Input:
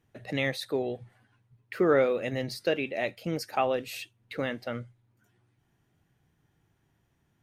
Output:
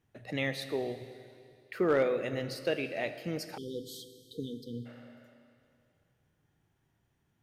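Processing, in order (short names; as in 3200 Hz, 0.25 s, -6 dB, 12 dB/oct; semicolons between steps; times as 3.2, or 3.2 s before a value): Schroeder reverb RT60 2.4 s, combs from 26 ms, DRR 10 dB; spectral delete 3.57–4.86, 500–3000 Hz; overloaded stage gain 15.5 dB; gain -4 dB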